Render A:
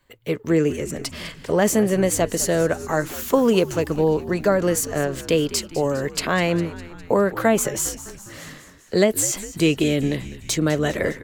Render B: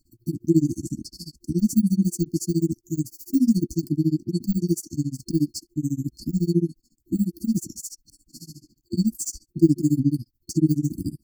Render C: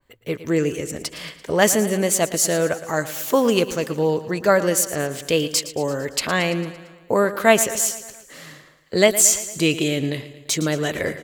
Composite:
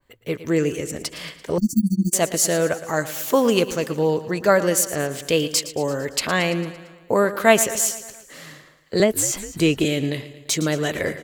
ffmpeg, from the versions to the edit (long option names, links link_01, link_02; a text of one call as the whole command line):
ffmpeg -i take0.wav -i take1.wav -i take2.wav -filter_complex "[2:a]asplit=3[link_01][link_02][link_03];[link_01]atrim=end=1.582[link_04];[1:a]atrim=start=1.578:end=2.132[link_05];[link_02]atrim=start=2.128:end=9.002[link_06];[0:a]atrim=start=8.998:end=9.852[link_07];[link_03]atrim=start=9.848[link_08];[link_04][link_05]acrossfade=duration=0.004:curve1=hsin:curve2=hsin[link_09];[link_09][link_06]acrossfade=duration=0.004:curve1=hsin:curve2=hsin[link_10];[link_10][link_07]acrossfade=duration=0.004:curve1=hsin:curve2=hsin[link_11];[link_11][link_08]acrossfade=duration=0.004:curve1=hsin:curve2=hsin" out.wav